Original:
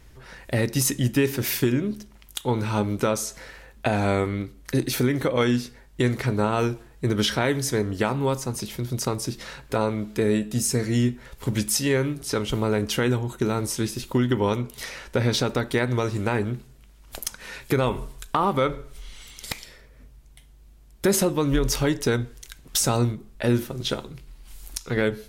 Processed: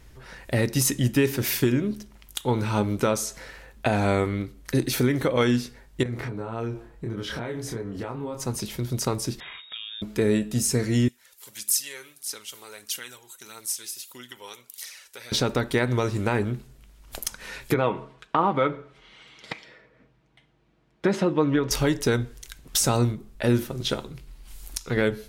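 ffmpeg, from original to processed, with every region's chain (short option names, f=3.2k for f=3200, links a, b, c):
-filter_complex "[0:a]asettb=1/sr,asplit=3[a][b][c];[a]atrim=end=6.034[d];[b]atrim=start=6.03:end=8.4,asetpts=PTS-STARTPTS,afade=t=in:d=0.004:c=qsin,afade=t=out:st=2.366:d=0.004:c=qsin,highshelf=f=2.8k:g=-11,acompressor=threshold=-29dB:ratio=8:attack=3.2:release=140:knee=1:detection=peak,asplit=2[e][f];[f]adelay=26,volume=-3dB[g];[e][g]amix=inputs=2:normalize=0,atrim=end_sample=104517[h];[c]atrim=start=8.396[i];[d][h]acrossfade=d=0.004:c1=hsin:c2=qsin[j];[j][i]acrossfade=d=0.004:c1=qsin:c2=hsin,asettb=1/sr,asplit=3[k][l][m];[k]atrim=end=9.404[n];[l]atrim=start=9.4:end=10.02,asetpts=PTS-STARTPTS,afade=t=in:d=0.004:c=qsin,afade=t=out:st=0.616:d=0.004:c=qsin,acompressor=threshold=-34dB:ratio=5:attack=3.2:release=140:knee=1:detection=peak,lowpass=f=3.2k:t=q:w=0.5098,lowpass=f=3.2k:t=q:w=0.6013,lowpass=f=3.2k:t=q:w=0.9,lowpass=f=3.2k:t=q:w=2.563,afreqshift=-3800[o];[m]atrim=start=10.016[p];[n][o]acrossfade=d=0.004:c1=hsin:c2=qsin[q];[q][p]acrossfade=d=0.004:c1=qsin:c2=hsin,asettb=1/sr,asplit=3[r][s][t];[r]atrim=end=11.084[u];[s]atrim=start=11.08:end=15.32,asetpts=PTS-STARTPTS,afade=t=in:d=0.004:c=qsin,afade=t=out:st=4.236:d=0.004:c=qsin,aderivative,aphaser=in_gain=1:out_gain=1:delay=2.7:decay=0.4:speed=1.6:type=triangular[v];[t]atrim=start=15.316[w];[u][v]acrossfade=d=0.004:c1=hsin:c2=qsin[x];[x][w]acrossfade=d=0.004:c1=qsin:c2=hsin,asettb=1/sr,asplit=3[y][z][aa];[y]atrim=end=17.744[ab];[z]atrim=start=17.74:end=21.71,asetpts=PTS-STARTPTS,afade=t=in:d=0.004:c=qsin,afade=t=out:st=3.966:d=0.004:c=qsin,highpass=170,lowpass=2.7k,aecho=1:1:6.3:0.4,atrim=end_sample=175077[ac];[aa]atrim=start=21.706[ad];[ab][ac]acrossfade=d=0.004:c1=hsin:c2=qsin[ae];[ae][ad]acrossfade=d=0.004:c1=qsin:c2=hsin"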